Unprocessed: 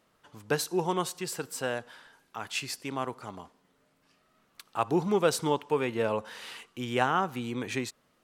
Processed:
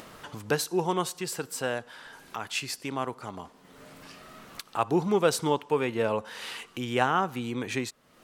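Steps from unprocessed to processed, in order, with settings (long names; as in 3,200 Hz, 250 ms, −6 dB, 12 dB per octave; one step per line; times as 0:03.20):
upward compression, threshold −33 dBFS
level +1.5 dB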